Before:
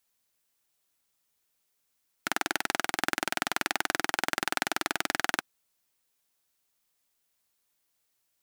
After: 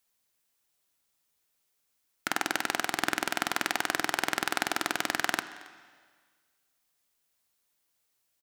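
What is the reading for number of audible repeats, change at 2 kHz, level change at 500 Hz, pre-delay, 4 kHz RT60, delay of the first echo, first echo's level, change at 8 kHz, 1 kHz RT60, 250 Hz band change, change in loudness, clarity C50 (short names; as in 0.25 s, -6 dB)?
1, 0.0 dB, 0.0 dB, 10 ms, 1.6 s, 0.273 s, -22.5 dB, 0.0 dB, 1.6 s, +0.5 dB, 0.0 dB, 12.5 dB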